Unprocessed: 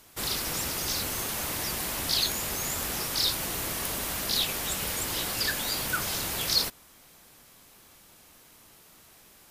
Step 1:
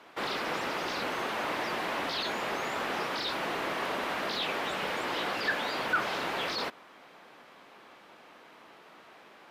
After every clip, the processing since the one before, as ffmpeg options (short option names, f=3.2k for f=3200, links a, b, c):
-filter_complex "[0:a]asplit=2[a][b];[b]highpass=f=720:p=1,volume=18dB,asoftclip=type=tanh:threshold=-12dB[c];[a][c]amix=inputs=2:normalize=0,lowpass=f=1.1k:p=1,volume=-6dB,acrossover=split=160 4200:gain=0.178 1 0.178[d][e][f];[d][e][f]amix=inputs=3:normalize=0"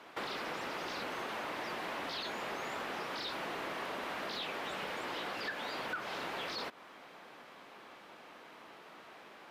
-af "acompressor=threshold=-37dB:ratio=6"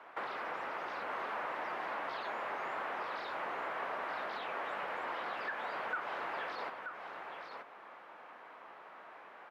-filter_complex "[0:a]acrossover=split=530 2100:gain=0.224 1 0.112[a][b][c];[a][b][c]amix=inputs=3:normalize=0,aecho=1:1:929:0.473,volume=3dB"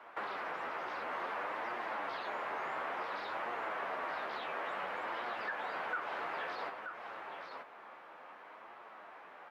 -af "flanger=delay=8.2:depth=5.3:regen=46:speed=0.57:shape=triangular,volume=4dB"